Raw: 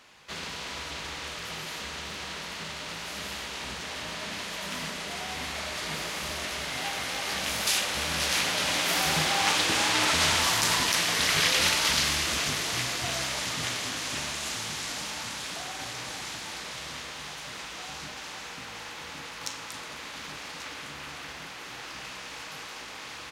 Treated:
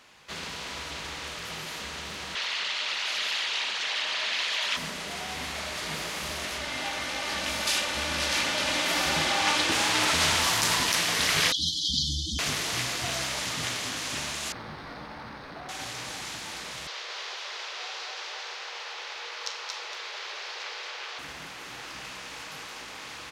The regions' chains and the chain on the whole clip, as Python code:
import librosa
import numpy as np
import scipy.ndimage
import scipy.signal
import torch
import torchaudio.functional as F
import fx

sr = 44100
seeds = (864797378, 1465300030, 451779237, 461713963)

y = fx.chain(x, sr, fx.envelope_sharpen(power=1.5),
    fx.highpass(hz=530.0, slope=12),
    fx.peak_eq(hz=3500.0, db=10.0, octaves=2.2), at=(2.35, 4.77))
y = fx.chain(y, sr, fx.high_shelf(hz=11000.0, db=-12.0),
    fx.comb(ms=3.4, depth=0.42), at=(6.58, 9.72))
y = fx.chain(y, sr, fx.spec_expand(power=2.4),
    fx.brickwall_bandstop(low_hz=330.0, high_hz=3000.0), at=(11.52, 12.39))
y = fx.chain(y, sr, fx.median_filter(points=15),
    fx.savgol(points=15),
    fx.doubler(ms=14.0, db=-12.5), at=(14.52, 15.69))
y = fx.chain(y, sr, fx.steep_highpass(hz=370.0, slope=96),
    fx.high_shelf_res(hz=7000.0, db=-13.0, q=1.5),
    fx.echo_single(ms=227, db=-4.0), at=(16.87, 21.19))